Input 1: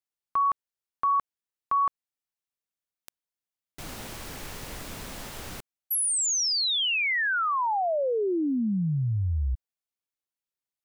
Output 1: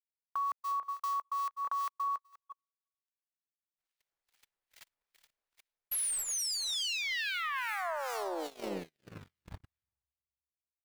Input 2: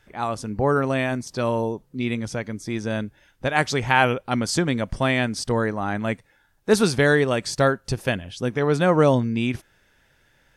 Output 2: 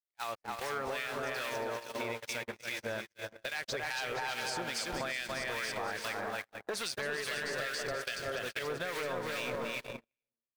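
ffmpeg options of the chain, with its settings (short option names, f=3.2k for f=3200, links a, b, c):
-filter_complex "[0:a]volume=15.5dB,asoftclip=hard,volume=-15.5dB,acrusher=bits=7:dc=4:mix=0:aa=0.000001,lowshelf=f=160:g=-10,asplit=2[a][b];[b]aecho=0:1:280|476|613.2|709.2|776.5:0.631|0.398|0.251|0.158|0.1[c];[a][c]amix=inputs=2:normalize=0,acrossover=split=1600[d][e];[d]aeval=exprs='val(0)*(1-0.7/2+0.7/2*cos(2*PI*2.4*n/s))':c=same[f];[e]aeval=exprs='val(0)*(1-0.7/2-0.7/2*cos(2*PI*2.4*n/s))':c=same[g];[f][g]amix=inputs=2:normalize=0,equalizer=f=125:t=o:w=1:g=-6,equalizer=f=250:t=o:w=1:g=-10,equalizer=f=2k:t=o:w=1:g=5,equalizer=f=4k:t=o:w=1:g=4,asplit=2[h][i];[i]adelay=363,lowpass=f=920:p=1,volume=-8dB,asplit=2[j][k];[k]adelay=363,lowpass=f=920:p=1,volume=0.33,asplit=2[l][m];[m]adelay=363,lowpass=f=920:p=1,volume=0.33,asplit=2[n][o];[o]adelay=363,lowpass=f=920:p=1,volume=0.33[p];[j][l][n][p]amix=inputs=4:normalize=0[q];[h][q]amix=inputs=2:normalize=0,agate=range=-51dB:threshold=-36dB:ratio=16:release=46:detection=peak,acompressor=threshold=-28dB:ratio=10:attack=1.5:release=260:knee=1:detection=peak,volume=-2dB"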